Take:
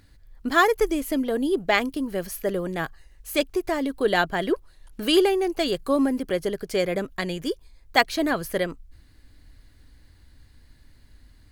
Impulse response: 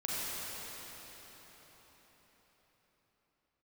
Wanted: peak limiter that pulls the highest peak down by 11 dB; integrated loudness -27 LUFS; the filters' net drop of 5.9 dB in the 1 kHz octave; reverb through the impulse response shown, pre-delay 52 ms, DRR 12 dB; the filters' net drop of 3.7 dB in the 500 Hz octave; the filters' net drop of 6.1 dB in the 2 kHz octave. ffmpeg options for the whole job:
-filter_complex "[0:a]equalizer=f=500:t=o:g=-3.5,equalizer=f=1000:t=o:g=-5.5,equalizer=f=2000:t=o:g=-5.5,alimiter=limit=0.112:level=0:latency=1,asplit=2[s0][s1];[1:a]atrim=start_sample=2205,adelay=52[s2];[s1][s2]afir=irnorm=-1:irlink=0,volume=0.126[s3];[s0][s3]amix=inputs=2:normalize=0,volume=1.33"

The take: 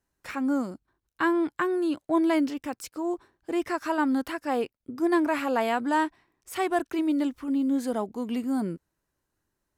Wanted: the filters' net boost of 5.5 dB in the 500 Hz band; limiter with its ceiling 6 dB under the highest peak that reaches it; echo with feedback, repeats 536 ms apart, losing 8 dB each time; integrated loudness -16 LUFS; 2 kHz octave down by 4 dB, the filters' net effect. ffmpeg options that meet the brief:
-af "equalizer=f=500:t=o:g=8.5,equalizer=f=2000:t=o:g=-6,alimiter=limit=0.168:level=0:latency=1,aecho=1:1:536|1072|1608|2144|2680:0.398|0.159|0.0637|0.0255|0.0102,volume=2.99"

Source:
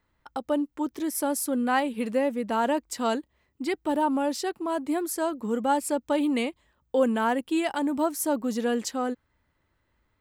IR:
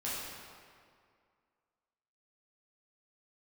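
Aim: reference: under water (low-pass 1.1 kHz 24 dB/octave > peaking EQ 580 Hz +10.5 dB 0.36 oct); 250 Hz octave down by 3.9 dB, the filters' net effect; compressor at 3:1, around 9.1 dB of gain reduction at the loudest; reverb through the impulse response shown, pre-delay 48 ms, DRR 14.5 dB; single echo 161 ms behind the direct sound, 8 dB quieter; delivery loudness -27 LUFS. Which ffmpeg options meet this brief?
-filter_complex "[0:a]equalizer=f=250:t=o:g=-5,acompressor=threshold=0.0251:ratio=3,aecho=1:1:161:0.398,asplit=2[s0][s1];[1:a]atrim=start_sample=2205,adelay=48[s2];[s1][s2]afir=irnorm=-1:irlink=0,volume=0.112[s3];[s0][s3]amix=inputs=2:normalize=0,lowpass=f=1100:w=0.5412,lowpass=f=1100:w=1.3066,equalizer=f=580:t=o:w=0.36:g=10.5,volume=1.58"

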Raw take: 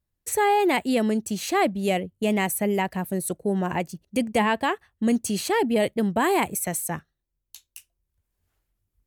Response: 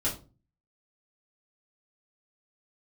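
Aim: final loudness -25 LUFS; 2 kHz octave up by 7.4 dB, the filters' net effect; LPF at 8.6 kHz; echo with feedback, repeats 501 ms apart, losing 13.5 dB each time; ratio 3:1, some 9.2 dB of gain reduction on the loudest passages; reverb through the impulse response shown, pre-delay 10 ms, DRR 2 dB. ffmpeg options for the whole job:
-filter_complex "[0:a]lowpass=8600,equalizer=f=2000:t=o:g=8.5,acompressor=threshold=0.0398:ratio=3,aecho=1:1:501|1002:0.211|0.0444,asplit=2[s0][s1];[1:a]atrim=start_sample=2205,adelay=10[s2];[s1][s2]afir=irnorm=-1:irlink=0,volume=0.376[s3];[s0][s3]amix=inputs=2:normalize=0,volume=1.19"

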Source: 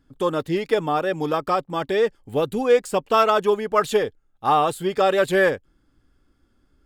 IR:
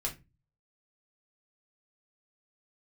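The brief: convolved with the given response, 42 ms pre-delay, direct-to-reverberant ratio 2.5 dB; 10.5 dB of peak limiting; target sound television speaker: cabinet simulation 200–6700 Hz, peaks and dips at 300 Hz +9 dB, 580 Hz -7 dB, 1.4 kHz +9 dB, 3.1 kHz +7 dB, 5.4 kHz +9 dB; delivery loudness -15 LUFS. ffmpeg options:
-filter_complex "[0:a]alimiter=limit=0.141:level=0:latency=1,asplit=2[s0][s1];[1:a]atrim=start_sample=2205,adelay=42[s2];[s1][s2]afir=irnorm=-1:irlink=0,volume=0.562[s3];[s0][s3]amix=inputs=2:normalize=0,highpass=f=200:w=0.5412,highpass=f=200:w=1.3066,equalizer=f=300:t=q:w=4:g=9,equalizer=f=580:t=q:w=4:g=-7,equalizer=f=1400:t=q:w=4:g=9,equalizer=f=3100:t=q:w=4:g=7,equalizer=f=5400:t=q:w=4:g=9,lowpass=f=6700:w=0.5412,lowpass=f=6700:w=1.3066,volume=2.51"

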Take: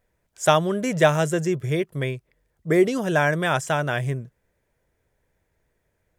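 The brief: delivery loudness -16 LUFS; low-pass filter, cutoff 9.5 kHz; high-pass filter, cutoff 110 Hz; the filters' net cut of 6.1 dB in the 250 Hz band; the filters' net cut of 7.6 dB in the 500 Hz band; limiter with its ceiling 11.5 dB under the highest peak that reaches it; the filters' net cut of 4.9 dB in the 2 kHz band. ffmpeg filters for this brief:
-af "highpass=110,lowpass=9500,equalizer=f=250:t=o:g=-6,equalizer=f=500:t=o:g=-8.5,equalizer=f=2000:t=o:g=-6,volume=5.62,alimiter=limit=0.596:level=0:latency=1"

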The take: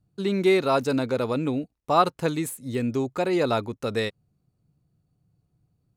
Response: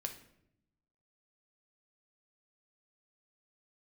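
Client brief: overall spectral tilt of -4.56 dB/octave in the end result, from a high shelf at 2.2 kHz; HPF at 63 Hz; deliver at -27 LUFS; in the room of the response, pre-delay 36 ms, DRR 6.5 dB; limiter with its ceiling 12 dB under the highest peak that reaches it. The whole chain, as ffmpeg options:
-filter_complex "[0:a]highpass=63,highshelf=f=2200:g=8.5,alimiter=limit=0.15:level=0:latency=1,asplit=2[s0][s1];[1:a]atrim=start_sample=2205,adelay=36[s2];[s1][s2]afir=irnorm=-1:irlink=0,volume=0.531[s3];[s0][s3]amix=inputs=2:normalize=0,volume=0.944"

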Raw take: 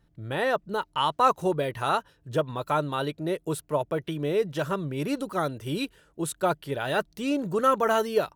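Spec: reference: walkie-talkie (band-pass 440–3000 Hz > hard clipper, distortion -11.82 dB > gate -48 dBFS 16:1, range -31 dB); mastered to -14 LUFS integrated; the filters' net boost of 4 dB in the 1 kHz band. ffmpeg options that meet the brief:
-af "highpass=440,lowpass=3000,equalizer=f=1000:t=o:g=5.5,asoftclip=type=hard:threshold=0.15,agate=range=0.0282:threshold=0.00398:ratio=16,volume=4.73"

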